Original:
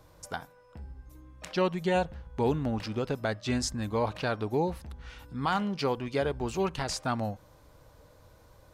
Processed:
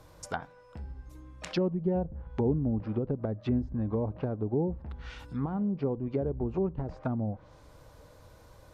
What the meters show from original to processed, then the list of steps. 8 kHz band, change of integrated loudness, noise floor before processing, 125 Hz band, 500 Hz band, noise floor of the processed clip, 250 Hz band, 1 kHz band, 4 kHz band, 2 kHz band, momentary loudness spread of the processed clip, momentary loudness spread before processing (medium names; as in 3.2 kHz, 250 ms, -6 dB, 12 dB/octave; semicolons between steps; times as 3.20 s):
under -10 dB, -1.0 dB, -58 dBFS, +2.5 dB, -2.0 dB, -55 dBFS, +2.0 dB, -9.5 dB, -11.0 dB, -10.5 dB, 15 LU, 18 LU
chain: low-pass that closes with the level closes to 380 Hz, closed at -27.5 dBFS; trim +2.5 dB